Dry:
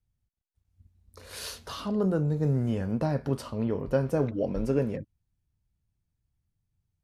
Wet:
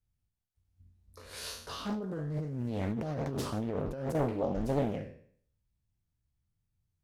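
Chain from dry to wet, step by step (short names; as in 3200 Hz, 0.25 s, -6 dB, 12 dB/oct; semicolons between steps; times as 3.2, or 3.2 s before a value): spectral trails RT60 0.58 s; 1.93–4.15 negative-ratio compressor -30 dBFS, ratio -1; Doppler distortion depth 0.72 ms; gain -4.5 dB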